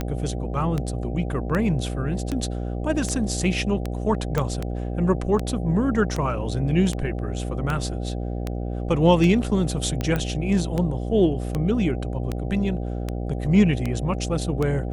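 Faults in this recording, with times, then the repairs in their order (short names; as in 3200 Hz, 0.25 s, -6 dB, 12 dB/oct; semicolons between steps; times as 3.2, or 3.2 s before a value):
buzz 60 Hz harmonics 13 -28 dBFS
tick 78 rpm -13 dBFS
4.38 pop -11 dBFS
10.16 pop -13 dBFS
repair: de-click; de-hum 60 Hz, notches 13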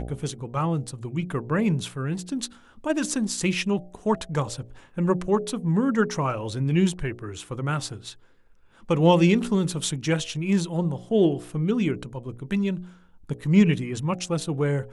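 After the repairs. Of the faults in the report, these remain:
none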